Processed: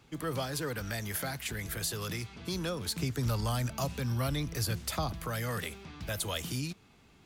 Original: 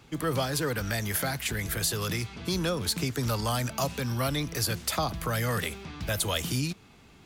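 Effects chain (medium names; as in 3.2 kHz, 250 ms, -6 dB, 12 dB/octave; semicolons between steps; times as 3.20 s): 2.98–5.13 s: bass shelf 140 Hz +9.5 dB; trim -6 dB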